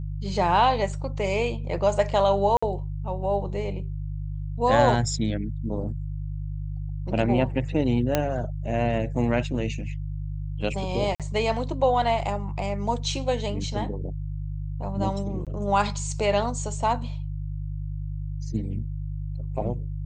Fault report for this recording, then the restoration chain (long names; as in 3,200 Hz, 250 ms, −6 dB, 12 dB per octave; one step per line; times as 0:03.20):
mains hum 50 Hz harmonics 3 −31 dBFS
0:02.57–0:02.62: drop-out 55 ms
0:08.15: click −7 dBFS
0:11.15–0:11.20: drop-out 47 ms
0:15.45–0:15.47: drop-out 17 ms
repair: click removal
hum removal 50 Hz, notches 3
repair the gap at 0:02.57, 55 ms
repair the gap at 0:11.15, 47 ms
repair the gap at 0:15.45, 17 ms